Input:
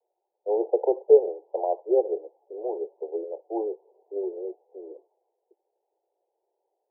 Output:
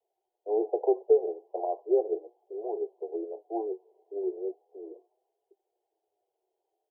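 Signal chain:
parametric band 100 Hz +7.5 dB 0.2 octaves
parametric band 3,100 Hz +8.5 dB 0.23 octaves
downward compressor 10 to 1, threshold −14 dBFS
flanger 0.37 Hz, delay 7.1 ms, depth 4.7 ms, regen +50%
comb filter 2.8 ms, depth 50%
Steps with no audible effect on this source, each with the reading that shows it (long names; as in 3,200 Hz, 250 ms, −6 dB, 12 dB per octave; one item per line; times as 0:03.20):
parametric band 100 Hz: nothing at its input below 290 Hz
parametric band 3,100 Hz: nothing at its input above 910 Hz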